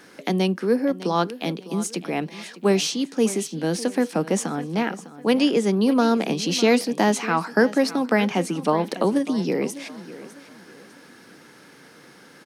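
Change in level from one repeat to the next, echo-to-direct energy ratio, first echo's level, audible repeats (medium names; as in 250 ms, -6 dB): -9.5 dB, -15.5 dB, -16.0 dB, 2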